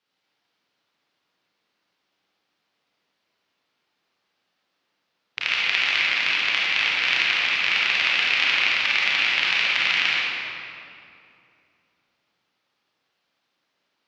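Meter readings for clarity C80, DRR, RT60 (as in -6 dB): -1.5 dB, -6.0 dB, 2.7 s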